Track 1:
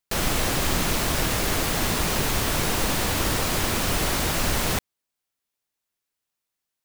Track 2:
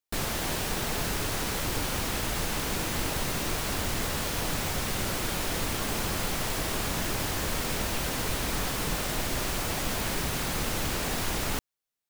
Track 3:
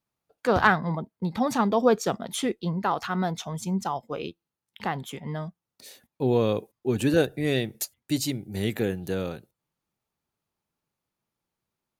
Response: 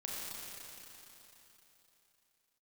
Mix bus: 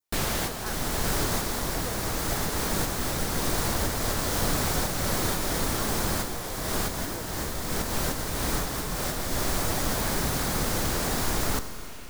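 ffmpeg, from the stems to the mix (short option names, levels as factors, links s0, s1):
-filter_complex "[0:a]adelay=550,volume=0.422[s0];[1:a]volume=1.19,asplit=2[s1][s2];[s2]volume=0.355[s3];[2:a]highpass=320,volume=0.1,asplit=2[s4][s5];[s5]apad=whole_len=533436[s6];[s1][s6]sidechaincompress=threshold=0.00224:ratio=8:attack=28:release=244[s7];[3:a]atrim=start_sample=2205[s8];[s3][s8]afir=irnorm=-1:irlink=0[s9];[s0][s7][s4][s9]amix=inputs=4:normalize=0,adynamicequalizer=threshold=0.00355:dfrequency=2700:dqfactor=1.9:tfrequency=2700:tqfactor=1.9:attack=5:release=100:ratio=0.375:range=3.5:mode=cutabove:tftype=bell"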